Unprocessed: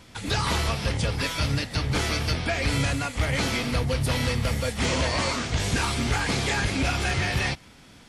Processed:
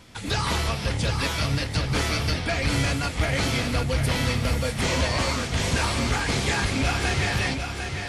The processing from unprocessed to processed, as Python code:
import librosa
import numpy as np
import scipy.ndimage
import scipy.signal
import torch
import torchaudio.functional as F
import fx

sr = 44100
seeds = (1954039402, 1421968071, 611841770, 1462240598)

y = fx.echo_feedback(x, sr, ms=750, feedback_pct=33, wet_db=-6)